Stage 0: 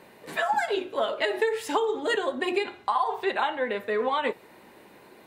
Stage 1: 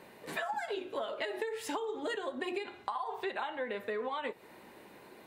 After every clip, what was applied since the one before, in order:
downward compressor, threshold −31 dBFS, peak gain reduction 11 dB
level −2.5 dB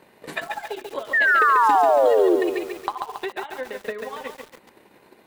transient designer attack +11 dB, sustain −7 dB
sound drawn into the spectrogram fall, 0:01.13–0:02.36, 330–1,900 Hz −18 dBFS
feedback echo at a low word length 139 ms, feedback 55%, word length 7 bits, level −4 dB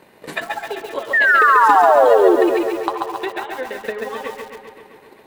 delay with a low-pass on its return 130 ms, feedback 70%, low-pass 3,000 Hz, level −8 dB
level +4 dB

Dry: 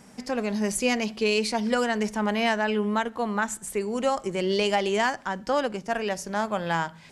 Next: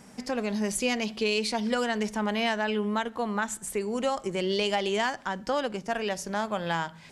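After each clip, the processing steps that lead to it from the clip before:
dynamic equaliser 3,500 Hz, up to +5 dB, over −46 dBFS, Q 2.5
downward compressor 1.5 to 1, threshold −29 dBFS, peak gain reduction 4 dB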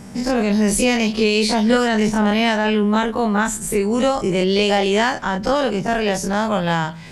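every bin's largest magnitude spread in time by 60 ms
low-shelf EQ 250 Hz +10.5 dB
level +5 dB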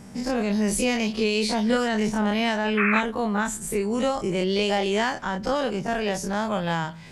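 sound drawn into the spectrogram noise, 0:02.77–0:03.01, 1,100–2,700 Hz −17 dBFS
level −6.5 dB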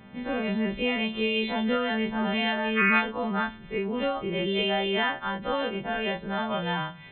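every partial snapped to a pitch grid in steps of 2 semitones
downsampling to 8,000 Hz
level −3.5 dB

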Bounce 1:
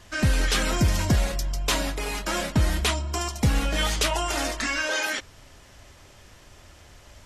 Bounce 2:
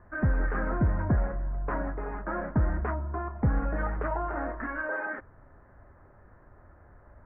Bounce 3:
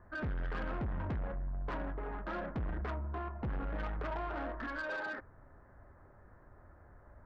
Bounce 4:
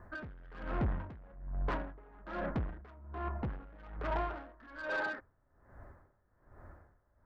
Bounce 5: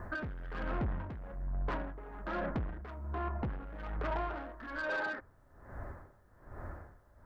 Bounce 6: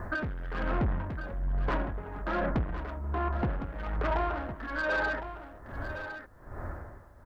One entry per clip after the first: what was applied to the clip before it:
Butterworth low-pass 1,700 Hz 48 dB per octave; level −3.5 dB
soft clipping −30 dBFS, distortion −8 dB; level −3.5 dB
tremolo with a sine in dB 1.2 Hz, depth 22 dB; level +5 dB
downward compressor 3 to 1, threshold −47 dBFS, peak gain reduction 12.5 dB; level +10 dB
single-tap delay 1,059 ms −10.5 dB; level +6 dB

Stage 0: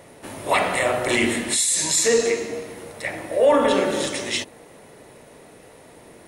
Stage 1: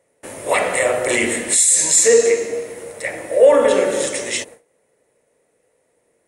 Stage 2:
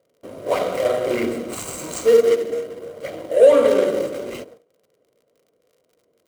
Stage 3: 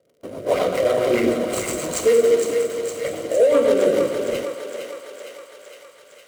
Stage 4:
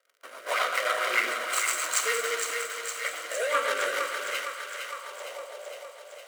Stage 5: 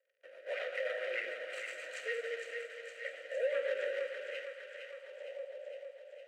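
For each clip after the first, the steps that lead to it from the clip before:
octave-band graphic EQ 2,000/4,000/8,000 Hz +6/−3/+12 dB; noise gate with hold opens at −31 dBFS; parametric band 500 Hz +11 dB 0.64 octaves; level −3 dB
running median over 25 samples; surface crackle 48 per second −46 dBFS; notch comb filter 860 Hz
brickwall limiter −12.5 dBFS, peak gain reduction 9.5 dB; rotating-speaker cabinet horn 7.5 Hz; feedback echo with a high-pass in the loop 460 ms, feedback 70%, high-pass 550 Hz, level −6 dB; level +5 dB
high-pass filter sweep 1,400 Hz → 700 Hz, 0:04.81–0:05.46
formant filter e

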